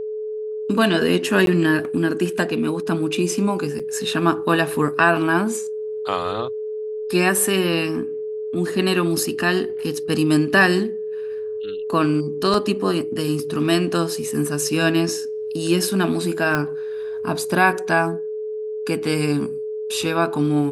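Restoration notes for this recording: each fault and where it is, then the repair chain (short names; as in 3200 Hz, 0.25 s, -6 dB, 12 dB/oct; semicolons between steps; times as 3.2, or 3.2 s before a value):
tone 430 Hz -25 dBFS
1.46–1.47 gap 12 ms
3.79–3.8 gap 5.8 ms
12.54 gap 2.1 ms
16.55 pop -8 dBFS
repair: de-click; notch 430 Hz, Q 30; interpolate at 1.46, 12 ms; interpolate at 3.79, 5.8 ms; interpolate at 12.54, 2.1 ms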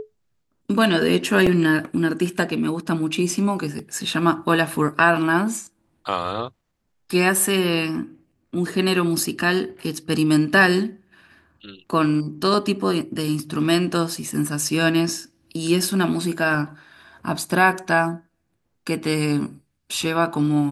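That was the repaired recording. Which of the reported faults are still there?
16.55 pop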